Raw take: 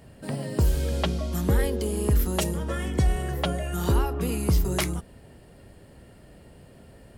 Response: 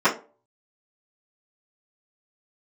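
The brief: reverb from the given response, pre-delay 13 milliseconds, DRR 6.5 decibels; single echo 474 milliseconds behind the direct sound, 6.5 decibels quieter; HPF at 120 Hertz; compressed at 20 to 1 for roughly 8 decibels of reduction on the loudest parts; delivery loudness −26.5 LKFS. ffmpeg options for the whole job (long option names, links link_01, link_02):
-filter_complex "[0:a]highpass=120,acompressor=threshold=-28dB:ratio=20,aecho=1:1:474:0.473,asplit=2[link_01][link_02];[1:a]atrim=start_sample=2205,adelay=13[link_03];[link_02][link_03]afir=irnorm=-1:irlink=0,volume=-26dB[link_04];[link_01][link_04]amix=inputs=2:normalize=0,volume=6.5dB"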